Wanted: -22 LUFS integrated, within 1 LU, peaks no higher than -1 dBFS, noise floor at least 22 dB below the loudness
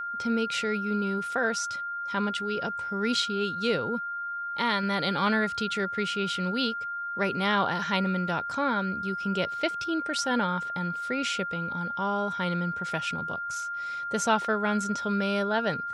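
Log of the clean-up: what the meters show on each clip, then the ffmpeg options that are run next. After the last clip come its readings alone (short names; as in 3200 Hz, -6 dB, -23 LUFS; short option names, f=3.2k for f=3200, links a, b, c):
steady tone 1400 Hz; tone level -31 dBFS; loudness -28.5 LUFS; peak -11.5 dBFS; loudness target -22.0 LUFS
-> -af "bandreject=f=1.4k:w=30"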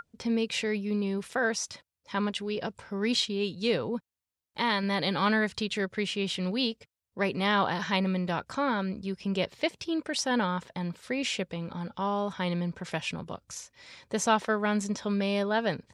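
steady tone none; loudness -30.0 LUFS; peak -12.0 dBFS; loudness target -22.0 LUFS
-> -af "volume=8dB"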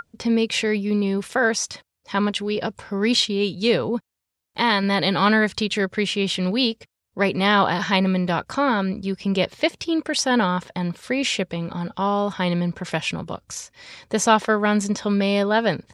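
loudness -22.0 LUFS; peak -4.0 dBFS; noise floor -82 dBFS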